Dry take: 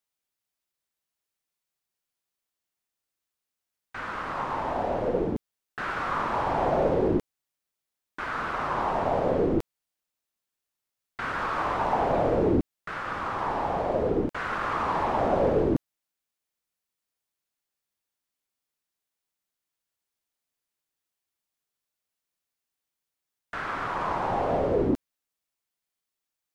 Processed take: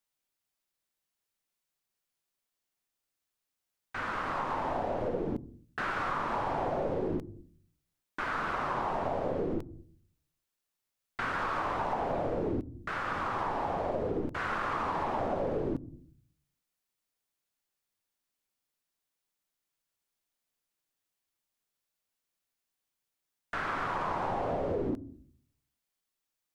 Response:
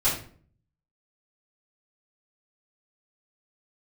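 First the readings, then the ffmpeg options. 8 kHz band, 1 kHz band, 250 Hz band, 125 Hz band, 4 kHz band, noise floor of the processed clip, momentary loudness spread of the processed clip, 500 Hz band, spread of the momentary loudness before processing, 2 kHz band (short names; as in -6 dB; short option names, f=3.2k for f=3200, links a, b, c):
n/a, -5.0 dB, -7.0 dB, -6.0 dB, -3.5 dB, under -85 dBFS, 6 LU, -7.0 dB, 11 LU, -3.0 dB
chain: -filter_complex "[0:a]asplit=2[a][b];[1:a]atrim=start_sample=2205,lowpass=1.3k,lowshelf=f=500:g=12[c];[b][c]afir=irnorm=-1:irlink=0,volume=-34.5dB[d];[a][d]amix=inputs=2:normalize=0,acompressor=threshold=-29dB:ratio=6"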